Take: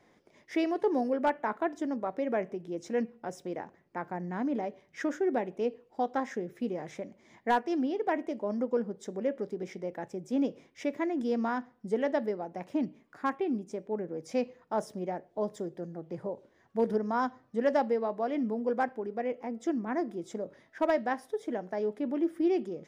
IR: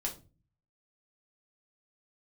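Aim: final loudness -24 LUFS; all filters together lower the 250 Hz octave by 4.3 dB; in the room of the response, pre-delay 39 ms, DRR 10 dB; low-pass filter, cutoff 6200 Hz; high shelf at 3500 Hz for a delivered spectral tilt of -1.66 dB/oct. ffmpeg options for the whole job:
-filter_complex "[0:a]lowpass=6.2k,equalizer=f=250:t=o:g=-5.5,highshelf=f=3.5k:g=-4,asplit=2[a][b];[1:a]atrim=start_sample=2205,adelay=39[c];[b][c]afir=irnorm=-1:irlink=0,volume=-12dB[d];[a][d]amix=inputs=2:normalize=0,volume=10.5dB"

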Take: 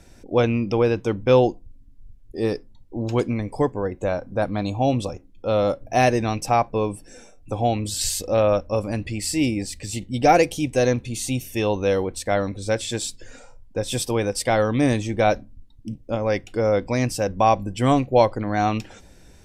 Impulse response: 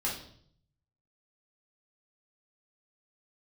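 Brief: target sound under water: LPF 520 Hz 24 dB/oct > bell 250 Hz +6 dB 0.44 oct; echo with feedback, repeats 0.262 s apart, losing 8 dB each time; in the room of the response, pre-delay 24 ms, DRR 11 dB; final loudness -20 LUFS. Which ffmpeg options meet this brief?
-filter_complex "[0:a]aecho=1:1:262|524|786|1048|1310:0.398|0.159|0.0637|0.0255|0.0102,asplit=2[a][b];[1:a]atrim=start_sample=2205,adelay=24[c];[b][c]afir=irnorm=-1:irlink=0,volume=-16.5dB[d];[a][d]amix=inputs=2:normalize=0,lowpass=f=520:w=0.5412,lowpass=f=520:w=1.3066,equalizer=f=250:t=o:w=0.44:g=6,volume=2.5dB"

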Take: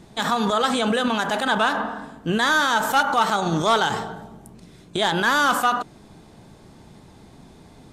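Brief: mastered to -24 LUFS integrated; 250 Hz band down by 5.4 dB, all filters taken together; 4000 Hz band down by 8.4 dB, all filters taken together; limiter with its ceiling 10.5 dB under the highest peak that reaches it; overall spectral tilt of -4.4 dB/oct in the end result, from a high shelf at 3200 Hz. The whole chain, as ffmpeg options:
-af "equalizer=f=250:t=o:g=-7,highshelf=f=3.2k:g=-4,equalizer=f=4k:t=o:g=-8,volume=5.5dB,alimiter=limit=-15.5dB:level=0:latency=1"

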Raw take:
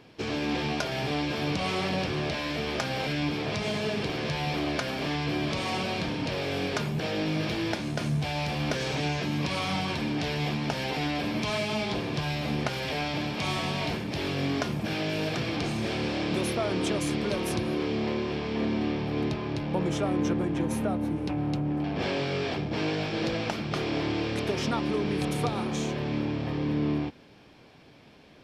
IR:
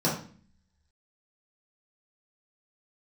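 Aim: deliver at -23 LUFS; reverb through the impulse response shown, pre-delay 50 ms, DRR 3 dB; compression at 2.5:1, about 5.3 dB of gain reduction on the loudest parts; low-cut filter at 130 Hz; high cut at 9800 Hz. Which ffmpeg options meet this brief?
-filter_complex "[0:a]highpass=130,lowpass=9.8k,acompressor=threshold=-32dB:ratio=2.5,asplit=2[a][b];[1:a]atrim=start_sample=2205,adelay=50[c];[b][c]afir=irnorm=-1:irlink=0,volume=-15dB[d];[a][d]amix=inputs=2:normalize=0,volume=5dB"

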